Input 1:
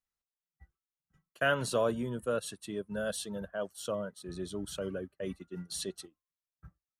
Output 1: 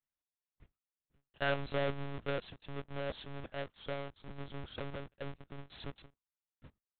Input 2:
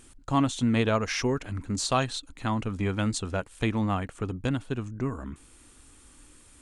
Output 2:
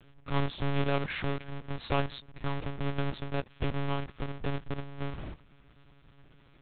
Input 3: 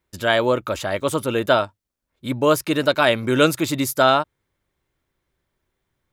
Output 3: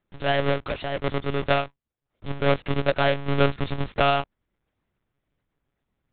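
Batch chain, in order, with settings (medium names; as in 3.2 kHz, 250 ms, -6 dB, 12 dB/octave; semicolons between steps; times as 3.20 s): square wave that keeps the level; monotone LPC vocoder at 8 kHz 140 Hz; trim -8 dB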